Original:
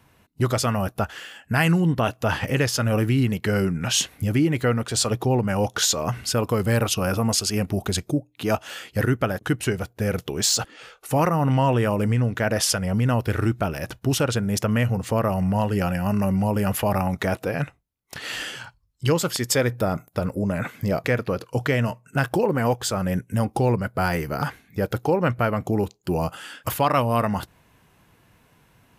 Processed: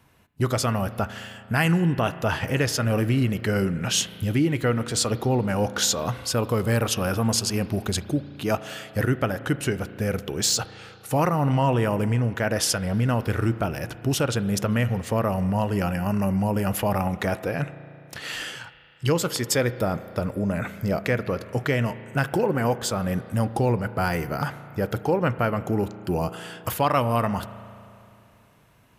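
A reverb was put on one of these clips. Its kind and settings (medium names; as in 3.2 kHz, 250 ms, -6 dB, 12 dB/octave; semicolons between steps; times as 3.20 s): spring tank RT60 2.7 s, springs 35 ms, chirp 50 ms, DRR 13.5 dB; trim -1.5 dB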